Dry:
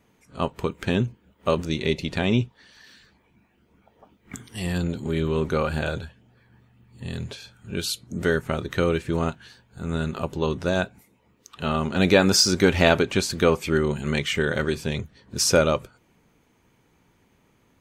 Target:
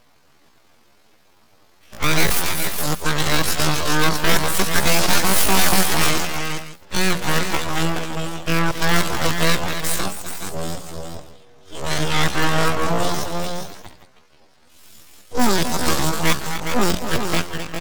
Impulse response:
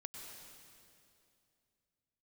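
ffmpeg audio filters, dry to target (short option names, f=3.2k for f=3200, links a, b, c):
-filter_complex "[0:a]areverse,asplit=2[a][b];[b]acontrast=90,volume=0dB[c];[a][c]amix=inputs=2:normalize=0,aeval=exprs='(mod(1.5*val(0)+1,2)-1)/1.5':c=same,lowpass=8.6k,asplit=2[d][e];[e]aecho=0:1:156|256|415|471|573:0.133|0.355|0.447|0.112|0.133[f];[d][f]amix=inputs=2:normalize=0,aeval=exprs='abs(val(0))':c=same,asetrate=88200,aresample=44100,atempo=0.5,bandreject=f=60:t=h:w=6,bandreject=f=120:t=h:w=6,bandreject=f=180:t=h:w=6,volume=-2dB"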